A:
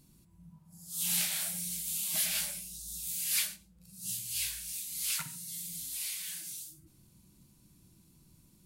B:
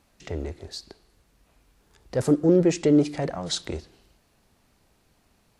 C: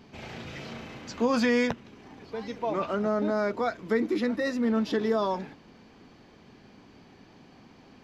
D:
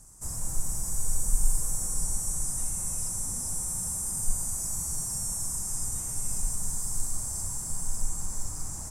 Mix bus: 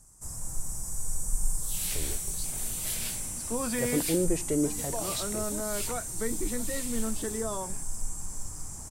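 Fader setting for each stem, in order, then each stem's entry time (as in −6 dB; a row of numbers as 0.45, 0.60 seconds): −4.5, −9.0, −8.0, −4.0 decibels; 0.70, 1.65, 2.30, 0.00 seconds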